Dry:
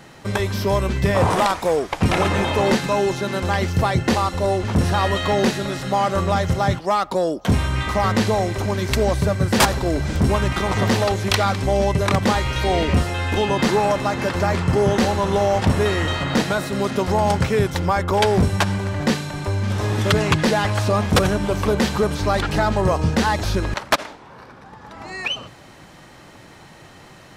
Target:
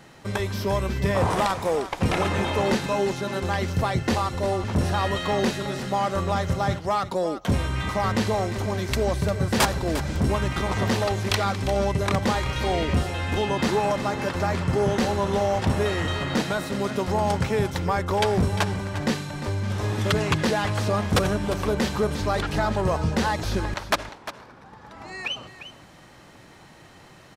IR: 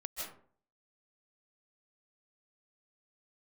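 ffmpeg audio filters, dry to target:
-af "aecho=1:1:351:0.237,volume=-5dB"

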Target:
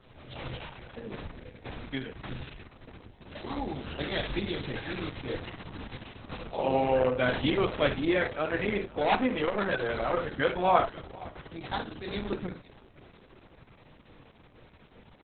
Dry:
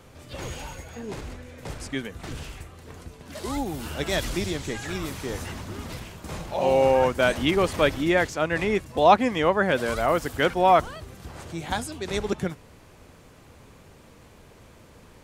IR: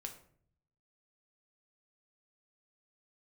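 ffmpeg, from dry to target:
-filter_complex "[0:a]equalizer=frequency=5500:width_type=o:width=0.22:gain=14.5,asettb=1/sr,asplit=3[link_01][link_02][link_03];[link_01]atrim=end=8.814[link_04];[link_02]atrim=start=8.81:end=10.12,asetpts=PTS-STARTPTS,afade=type=in:duration=0.004:curve=qsin,afade=type=out:start_time=1.306:duration=0.004:curve=qsin,asoftclip=type=hard:threshold=-17.5dB[link_05];[link_03]atrim=start=10.116[link_06];[link_04][link_05]acrossfade=duration=0.004:curve1=hsin:curve2=qsin[link_07];[link_07][link_06]acrossfade=duration=0.004:curve1=qsin:curve2=hsin,aecho=1:1:507|1014|1521:0.1|0.038|0.0144[link_08];[1:a]atrim=start_sample=2205,atrim=end_sample=4410[link_09];[link_08][link_09]afir=irnorm=-1:irlink=0,aresample=16000,aresample=44100" -ar 48000 -c:a libopus -b:a 6k

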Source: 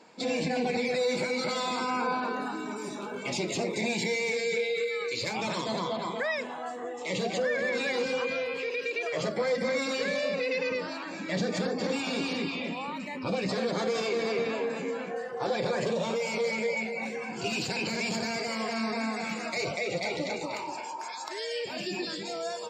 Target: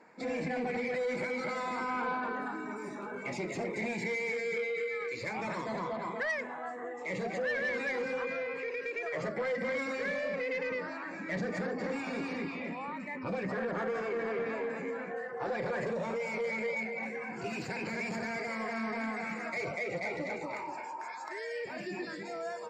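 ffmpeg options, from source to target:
ffmpeg -i in.wav -af "asetnsamples=nb_out_samples=441:pad=0,asendcmd='13.43 highshelf g -13;14.47 highshelf g -7.5',highshelf=frequency=2500:width_type=q:width=3:gain=-7.5,asoftclip=type=tanh:threshold=-22dB,volume=-4dB" out.wav

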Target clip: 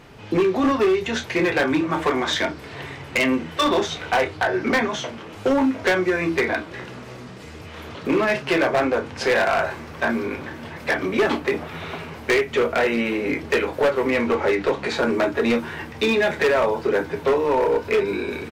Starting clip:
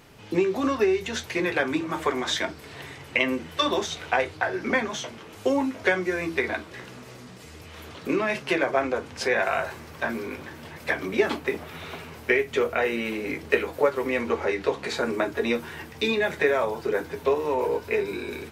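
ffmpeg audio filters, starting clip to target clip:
ffmpeg -i in.wav -filter_complex "[0:a]lowpass=frequency=3100:poles=1,asplit=2[link_01][link_02];[link_02]adelay=30,volume=-10dB[link_03];[link_01][link_03]amix=inputs=2:normalize=0,asoftclip=type=hard:threshold=-21dB,volume=6.5dB" out.wav

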